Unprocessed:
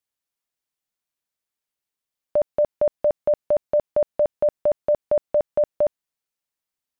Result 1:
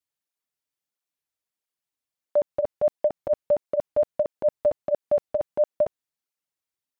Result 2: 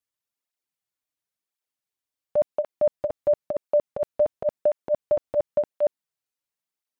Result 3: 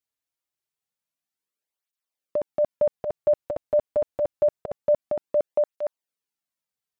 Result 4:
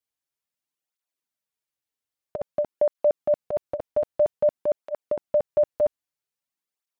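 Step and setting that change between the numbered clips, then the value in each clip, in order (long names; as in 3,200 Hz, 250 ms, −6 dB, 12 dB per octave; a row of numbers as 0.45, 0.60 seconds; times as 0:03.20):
through-zero flanger with one copy inverted, nulls at: 1.5, 0.95, 0.26, 0.51 Hertz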